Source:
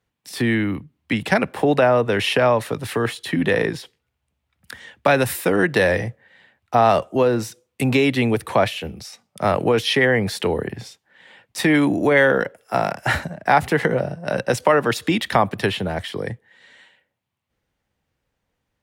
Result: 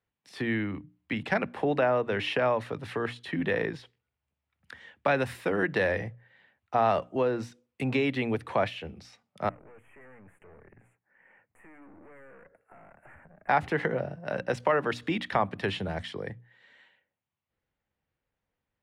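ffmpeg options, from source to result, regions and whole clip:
ffmpeg -i in.wav -filter_complex "[0:a]asettb=1/sr,asplit=3[link_01][link_02][link_03];[link_01]atrim=end=9.494[link_04];[link_02]atrim=start=9.49:end=13.49,asetpts=PTS-STARTPTS,afade=type=in:duration=0.004:curve=qsin,afade=type=out:start_time=3.996:duration=0.004:curve=qsin,aeval=exprs='(tanh(25.1*val(0)+0.6)-tanh(0.6))/25.1':channel_layout=same,acompressor=threshold=-41dB:ratio=6:attack=3.2:release=140:knee=1:detection=peak,asuperstop=centerf=4500:order=8:qfactor=0.8[link_05];[link_03]atrim=start=13.486[link_06];[link_04][link_05]acrossfade=duration=0.004:curve1=hsin:curve2=qsin[link_07];[link_07][link_06]acrossfade=duration=0.004:curve1=qsin:curve2=hsin,asettb=1/sr,asplit=3[link_08][link_09][link_10];[link_08]atrim=end=15.684[link_11];[link_09]atrim=start=15.68:end=16.13,asetpts=PTS-STARTPTS,afade=type=in:duration=0.004:curve=qsin,afade=type=out:start_time=0.446:duration=0.004:curve=qsin,lowpass=9800,bass=frequency=250:gain=3,treble=frequency=4000:gain=9[link_12];[link_10]atrim=start=16.126[link_13];[link_11][link_12]acrossfade=duration=0.004:curve1=hsin:curve2=qsin[link_14];[link_14][link_13]acrossfade=duration=0.004:curve1=qsin:curve2=hsin,lowpass=2300,aemphasis=mode=production:type=75fm,bandreject=frequency=60:width_type=h:width=6,bandreject=frequency=120:width_type=h:width=6,bandreject=frequency=180:width_type=h:width=6,bandreject=frequency=240:width_type=h:width=6,bandreject=frequency=300:width_type=h:width=6,volume=-8.5dB" out.wav

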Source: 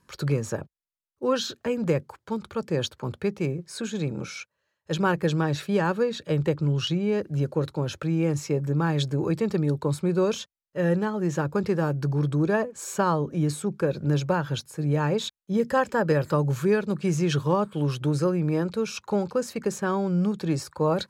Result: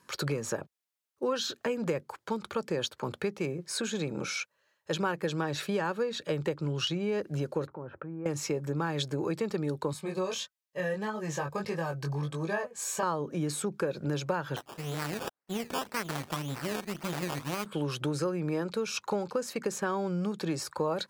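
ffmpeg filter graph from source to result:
ffmpeg -i in.wav -filter_complex "[0:a]asettb=1/sr,asplit=3[link_01][link_02][link_03];[link_01]atrim=end=7.674[link_04];[link_02]atrim=start=7.67:end=8.26,asetpts=PTS-STARTPTS,afade=type=in:duration=0.004:curve=qsin,afade=type=out:start_time=0.586:duration=0.004:curve=qsin,lowpass=frequency=1500:width=0.5412,lowpass=frequency=1500:width=1.3066,acompressor=threshold=-43dB:ratio=2.5:attack=3.2:release=140:knee=1:detection=peak[link_05];[link_03]atrim=start=8.256[link_06];[link_04][link_05]acrossfade=duration=0.004:curve1=hsin:curve2=qsin[link_07];[link_07][link_06]acrossfade=duration=0.004:curve1=qsin:curve2=hsin,asettb=1/sr,asplit=3[link_08][link_09][link_10];[link_08]atrim=end=9.934[link_11];[link_09]atrim=start=9.93:end=13.03,asetpts=PTS-STARTPTS,afade=type=in:duration=0.004:curve=qsin,afade=type=out:start_time=3.096:duration=0.004:curve=qsin,equalizer=frequency=300:width_type=o:width=1.2:gain=-9,flanger=delay=18:depth=3.8:speed=1.6,asuperstop=centerf=1400:order=20:qfactor=7.2[link_12];[link_10]atrim=start=13.026[link_13];[link_11][link_12]acrossfade=duration=0.004:curve1=hsin:curve2=qsin[link_14];[link_14][link_13]acrossfade=duration=0.004:curve1=qsin:curve2=hsin,asettb=1/sr,asplit=3[link_15][link_16][link_17];[link_15]atrim=end=14.564[link_18];[link_16]atrim=start=14.56:end=17.66,asetpts=PTS-STARTPTS,afade=type=in:duration=0.004:curve=qsin,afade=type=out:start_time=3.096:duration=0.004:curve=qsin,equalizer=frequency=550:width=1.2:gain=-14,acrusher=samples=17:mix=1:aa=0.000001:lfo=1:lforange=10.2:lforate=1.9,aeval=exprs='max(val(0),0)':channel_layout=same[link_19];[link_17]atrim=start=17.656[link_20];[link_18][link_19]acrossfade=duration=0.004:curve1=hsin:curve2=qsin[link_21];[link_21][link_20]acrossfade=duration=0.004:curve1=qsin:curve2=hsin,highpass=frequency=350:poles=1,acompressor=threshold=-35dB:ratio=3,volume=5dB" out.wav

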